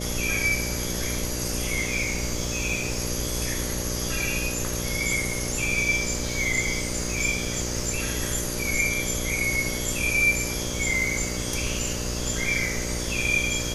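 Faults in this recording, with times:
buzz 60 Hz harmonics 10 -32 dBFS

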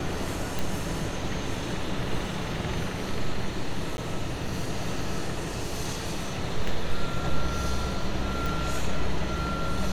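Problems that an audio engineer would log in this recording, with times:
0.59 pop
3.97–3.98 gap 11 ms
8.46 pop

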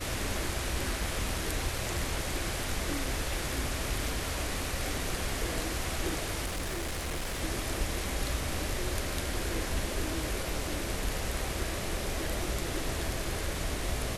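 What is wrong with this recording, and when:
6.45–7.42 clipped -30.5 dBFS

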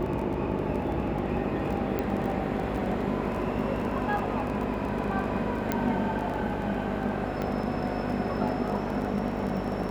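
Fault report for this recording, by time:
buzz 50 Hz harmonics 13 -34 dBFS
crackle 17/s -33 dBFS
1.99 pop -16 dBFS
5.72 pop -12 dBFS
7.42 pop -19 dBFS

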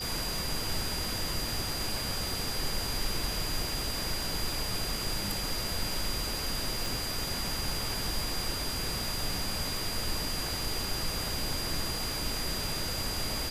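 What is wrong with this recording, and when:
tone 4800 Hz -36 dBFS
6.86 pop

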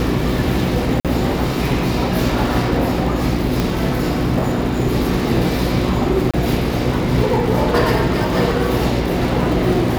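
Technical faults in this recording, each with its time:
crackle 150/s -25 dBFS
hum 60 Hz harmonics 6 -22 dBFS
1–1.05 gap 47 ms
3.6 pop
6.31–6.34 gap 26 ms

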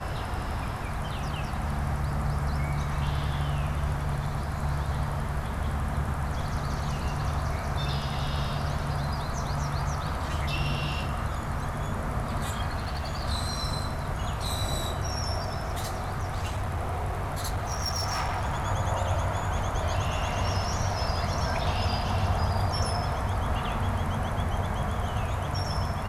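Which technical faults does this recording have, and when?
12.78–13.24 clipped -27 dBFS
15.43–18.64 clipped -25.5 dBFS

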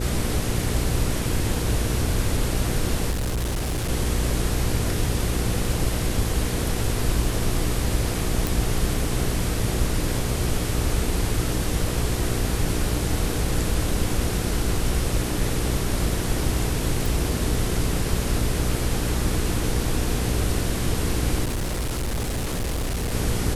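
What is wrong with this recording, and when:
hum 60 Hz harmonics 8 -28 dBFS
3.1–3.9 clipped -22 dBFS
8.47 pop
17.06 pop
21.44–23.14 clipped -22.5 dBFS

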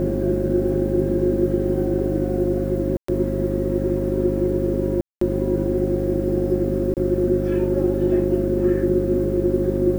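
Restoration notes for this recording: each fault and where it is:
hum 50 Hz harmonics 6 -25 dBFS
tone 540 Hz -27 dBFS
2.97–3.08 gap 0.114 s
5.01–5.21 gap 0.204 s
6.94–6.97 gap 28 ms

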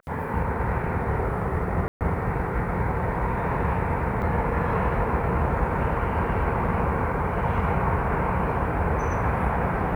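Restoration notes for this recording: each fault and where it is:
1.88–2.01 gap 0.128 s
4.22 gap 4.3 ms

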